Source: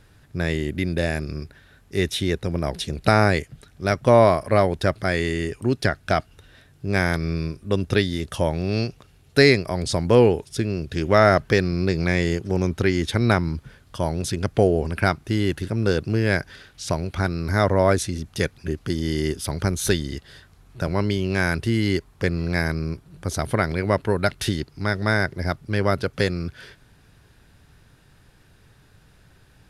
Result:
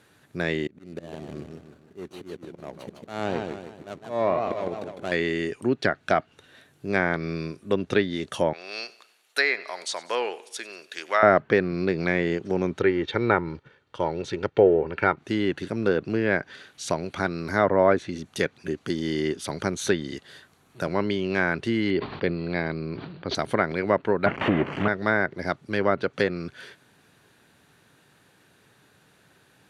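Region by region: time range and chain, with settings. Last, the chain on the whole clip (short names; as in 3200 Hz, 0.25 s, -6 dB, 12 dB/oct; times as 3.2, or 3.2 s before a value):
0.67–5.12 median filter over 25 samples + auto swell 0.411 s + warbling echo 0.153 s, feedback 43%, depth 171 cents, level -5 dB
8.53–11.23 HPF 970 Hz + feedback echo 95 ms, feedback 48%, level -20 dB
12.79–15.17 G.711 law mismatch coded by A + LPF 3600 Hz + comb 2.2 ms, depth 48%
21.9–23.35 Chebyshev low-pass 4500 Hz, order 5 + dynamic EQ 1600 Hz, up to -5 dB, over -41 dBFS, Q 1.4 + sustainer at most 44 dB/s
24.26–24.88 delta modulation 16 kbps, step -34 dBFS + sample leveller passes 3
whole clip: HPF 210 Hz 12 dB/oct; treble ducked by the level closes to 2200 Hz, closed at -18 dBFS; notch 5100 Hz, Q 9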